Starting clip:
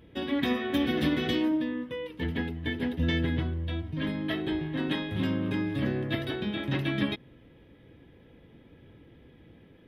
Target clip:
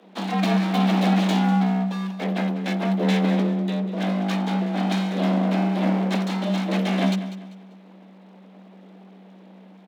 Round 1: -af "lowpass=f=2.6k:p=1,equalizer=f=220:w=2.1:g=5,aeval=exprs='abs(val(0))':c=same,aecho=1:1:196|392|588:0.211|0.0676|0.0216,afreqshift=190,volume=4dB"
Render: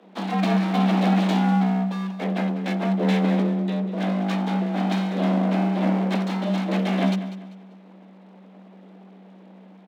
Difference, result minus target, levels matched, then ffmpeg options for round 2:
8000 Hz band -4.0 dB
-af "lowpass=f=9k:p=1,equalizer=f=220:w=2.1:g=5,aeval=exprs='abs(val(0))':c=same,aecho=1:1:196|392|588:0.211|0.0676|0.0216,afreqshift=190,volume=4dB"

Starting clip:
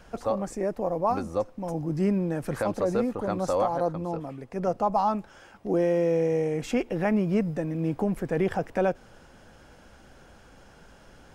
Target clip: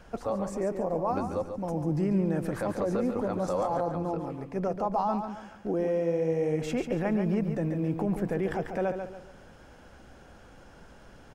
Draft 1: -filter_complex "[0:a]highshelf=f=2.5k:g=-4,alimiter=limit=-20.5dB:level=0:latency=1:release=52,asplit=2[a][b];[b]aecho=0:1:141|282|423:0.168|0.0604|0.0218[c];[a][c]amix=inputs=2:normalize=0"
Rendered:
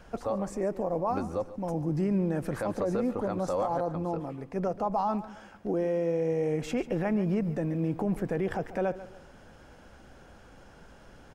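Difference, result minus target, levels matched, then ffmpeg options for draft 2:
echo-to-direct -8 dB
-filter_complex "[0:a]highshelf=f=2.5k:g=-4,alimiter=limit=-20.5dB:level=0:latency=1:release=52,asplit=2[a][b];[b]aecho=0:1:141|282|423|564:0.422|0.152|0.0547|0.0197[c];[a][c]amix=inputs=2:normalize=0"

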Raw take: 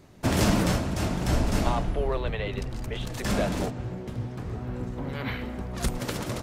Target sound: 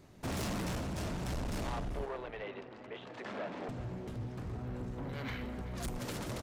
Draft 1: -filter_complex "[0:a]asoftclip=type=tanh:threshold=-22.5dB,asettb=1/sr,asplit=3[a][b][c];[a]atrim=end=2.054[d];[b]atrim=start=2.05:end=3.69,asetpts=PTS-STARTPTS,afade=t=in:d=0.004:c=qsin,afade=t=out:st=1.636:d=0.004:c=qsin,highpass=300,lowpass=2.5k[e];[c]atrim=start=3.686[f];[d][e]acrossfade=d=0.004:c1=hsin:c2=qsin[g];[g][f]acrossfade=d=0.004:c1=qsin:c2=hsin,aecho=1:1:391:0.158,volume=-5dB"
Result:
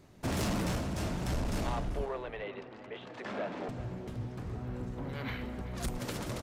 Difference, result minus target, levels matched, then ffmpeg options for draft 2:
soft clip: distortion -5 dB
-filter_complex "[0:a]asoftclip=type=tanh:threshold=-29dB,asettb=1/sr,asplit=3[a][b][c];[a]atrim=end=2.054[d];[b]atrim=start=2.05:end=3.69,asetpts=PTS-STARTPTS,afade=t=in:d=0.004:c=qsin,afade=t=out:st=1.636:d=0.004:c=qsin,highpass=300,lowpass=2.5k[e];[c]atrim=start=3.686[f];[d][e]acrossfade=d=0.004:c1=hsin:c2=qsin[g];[g][f]acrossfade=d=0.004:c1=qsin:c2=hsin,aecho=1:1:391:0.158,volume=-5dB"

